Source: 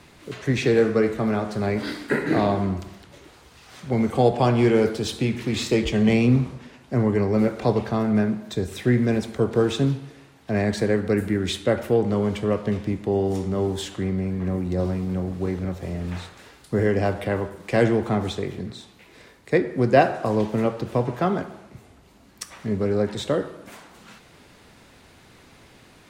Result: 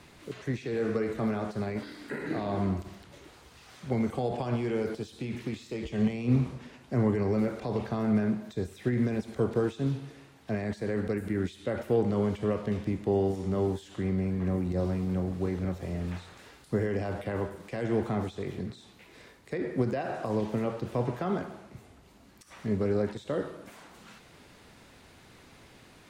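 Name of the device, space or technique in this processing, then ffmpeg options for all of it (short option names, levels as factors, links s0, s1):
de-esser from a sidechain: -filter_complex "[0:a]asplit=2[s0][s1];[s1]highpass=4800,apad=whole_len=1150714[s2];[s0][s2]sidechaincompress=threshold=0.00224:ratio=4:attack=3.4:release=45,volume=0.668"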